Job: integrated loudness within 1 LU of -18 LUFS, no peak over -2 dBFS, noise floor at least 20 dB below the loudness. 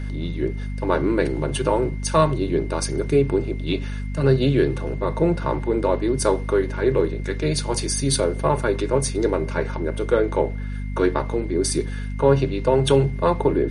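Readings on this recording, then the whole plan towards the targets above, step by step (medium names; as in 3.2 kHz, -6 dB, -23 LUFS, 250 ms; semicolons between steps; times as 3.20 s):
hum 50 Hz; highest harmonic 250 Hz; hum level -25 dBFS; steady tone 2.1 kHz; tone level -45 dBFS; loudness -22.0 LUFS; peak level -4.5 dBFS; loudness target -18.0 LUFS
-> de-hum 50 Hz, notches 5; band-stop 2.1 kHz, Q 30; trim +4 dB; peak limiter -2 dBFS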